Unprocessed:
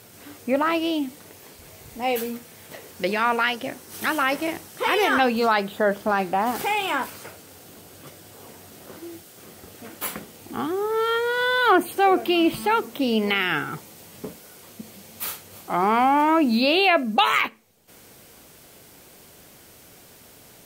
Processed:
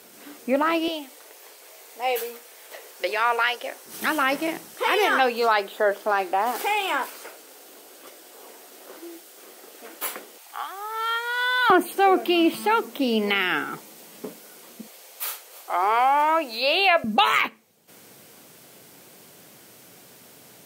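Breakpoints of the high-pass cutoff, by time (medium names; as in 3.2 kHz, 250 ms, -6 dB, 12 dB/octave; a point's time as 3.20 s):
high-pass 24 dB/octave
200 Hz
from 0.88 s 420 Hz
from 3.86 s 150 Hz
from 4.74 s 320 Hz
from 10.38 s 730 Hz
from 11.70 s 200 Hz
from 14.87 s 460 Hz
from 17.04 s 120 Hz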